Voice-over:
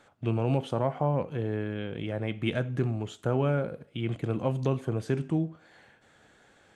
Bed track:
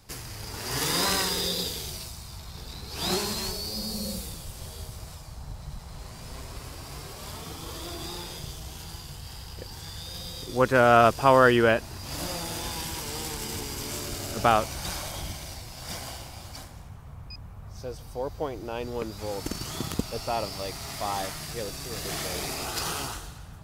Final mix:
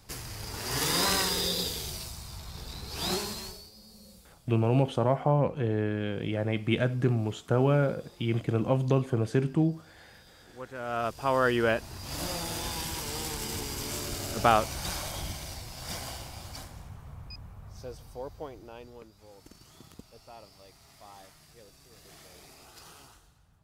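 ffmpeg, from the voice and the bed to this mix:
-filter_complex "[0:a]adelay=4250,volume=2.5dB[a];[1:a]volume=18dB,afade=t=out:st=2.92:d=0.79:silence=0.112202,afade=t=in:st=10.78:d=1.5:silence=0.112202,afade=t=out:st=17.01:d=2.11:silence=0.112202[b];[a][b]amix=inputs=2:normalize=0"

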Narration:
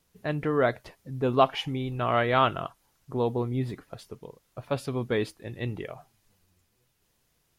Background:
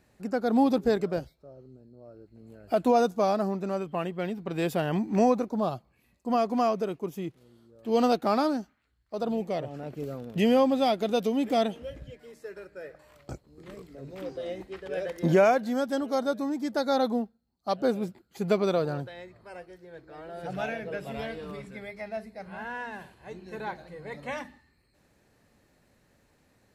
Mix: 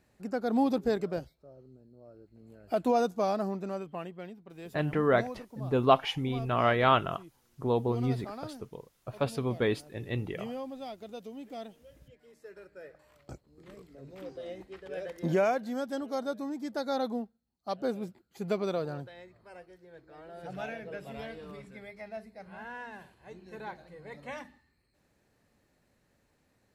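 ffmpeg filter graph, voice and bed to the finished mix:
-filter_complex "[0:a]adelay=4500,volume=-1dB[a];[1:a]volume=7dB,afade=t=out:st=3.55:d=0.91:silence=0.223872,afade=t=in:st=11.86:d=0.82:silence=0.281838[b];[a][b]amix=inputs=2:normalize=0"

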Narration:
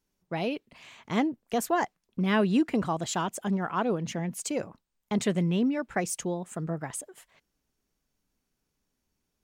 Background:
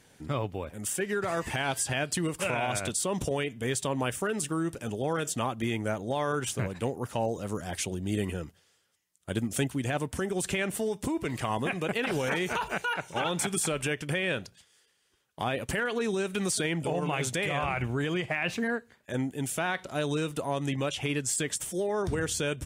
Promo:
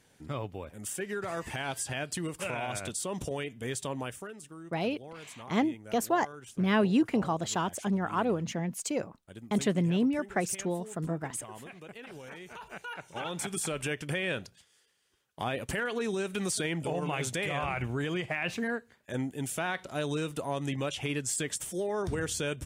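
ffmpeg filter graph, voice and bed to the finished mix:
-filter_complex "[0:a]adelay=4400,volume=-1dB[a];[1:a]volume=9dB,afade=t=out:st=3.91:d=0.46:silence=0.266073,afade=t=in:st=12.5:d=1.47:silence=0.199526[b];[a][b]amix=inputs=2:normalize=0"

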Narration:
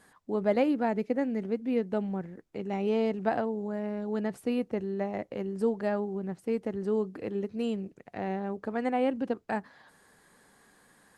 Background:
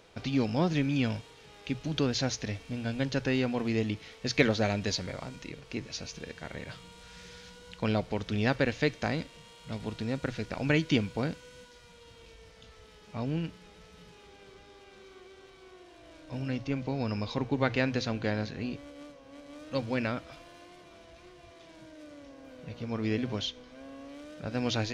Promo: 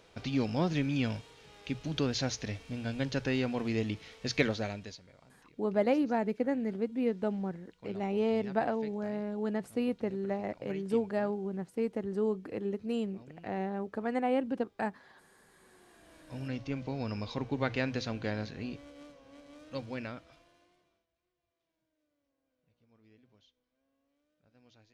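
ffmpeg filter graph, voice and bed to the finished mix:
-filter_complex "[0:a]adelay=5300,volume=-2dB[a];[1:a]volume=14.5dB,afade=t=out:st=4.3:d=0.7:silence=0.11885,afade=t=in:st=15.44:d=1.02:silence=0.141254,afade=t=out:st=19.2:d=1.86:silence=0.0354813[b];[a][b]amix=inputs=2:normalize=0"

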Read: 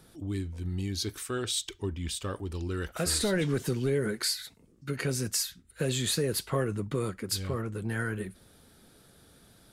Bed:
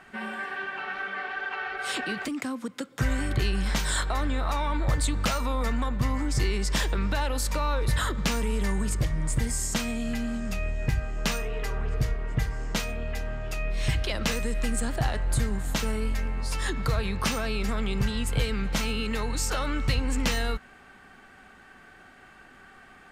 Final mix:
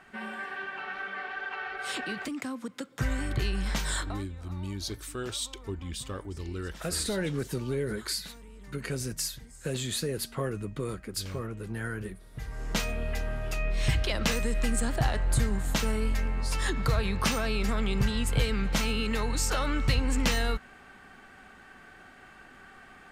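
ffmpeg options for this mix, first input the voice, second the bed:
-filter_complex "[0:a]adelay=3850,volume=-3dB[a];[1:a]volume=18.5dB,afade=t=out:st=3.94:d=0.31:silence=0.11885,afade=t=in:st=12.32:d=0.48:silence=0.0794328[b];[a][b]amix=inputs=2:normalize=0"

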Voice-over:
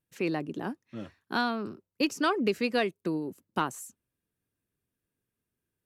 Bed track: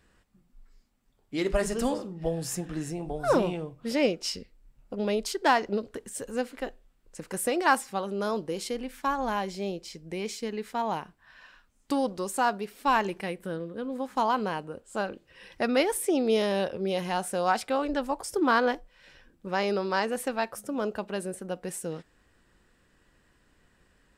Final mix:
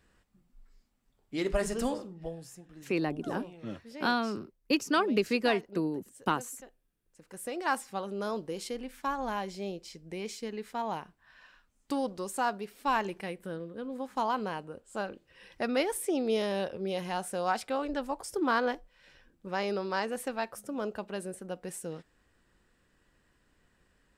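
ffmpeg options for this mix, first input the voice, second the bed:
-filter_complex "[0:a]adelay=2700,volume=0dB[a];[1:a]volume=10dB,afade=t=out:st=1.82:d=0.7:silence=0.188365,afade=t=in:st=7.16:d=0.82:silence=0.223872[b];[a][b]amix=inputs=2:normalize=0"

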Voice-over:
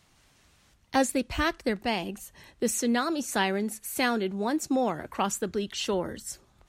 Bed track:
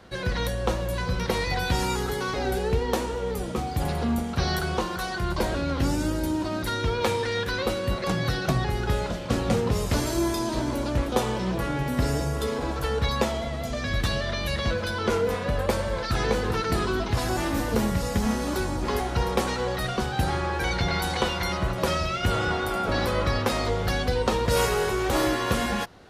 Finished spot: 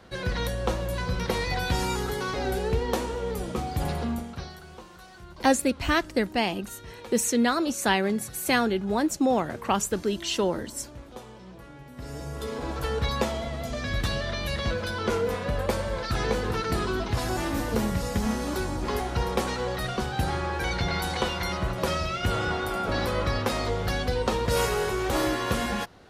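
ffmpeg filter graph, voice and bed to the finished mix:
-filter_complex "[0:a]adelay=4500,volume=3dB[a];[1:a]volume=15dB,afade=t=out:st=3.91:d=0.62:silence=0.141254,afade=t=in:st=11.95:d=0.88:silence=0.149624[b];[a][b]amix=inputs=2:normalize=0"

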